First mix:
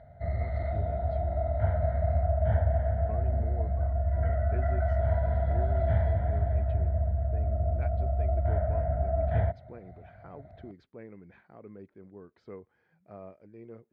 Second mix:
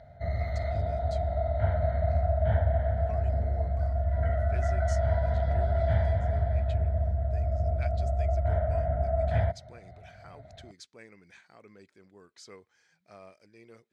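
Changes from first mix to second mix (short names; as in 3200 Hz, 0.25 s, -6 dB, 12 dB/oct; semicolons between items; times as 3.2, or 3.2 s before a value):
speech: add tilt shelf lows -9 dB, about 1400 Hz; master: remove air absorption 370 m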